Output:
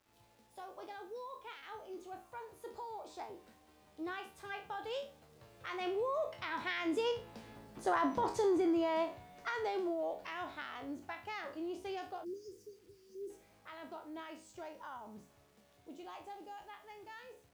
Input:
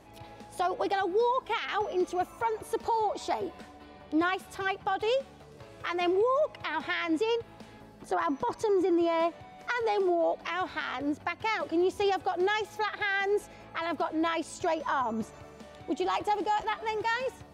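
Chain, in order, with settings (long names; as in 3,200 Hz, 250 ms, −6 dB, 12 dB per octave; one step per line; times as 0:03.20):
peak hold with a decay on every bin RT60 0.36 s
source passing by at 0:07.96, 12 m/s, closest 13 metres
time-frequency box erased 0:12.24–0:13.30, 510–4,500 Hz
bit reduction 11 bits
level −4 dB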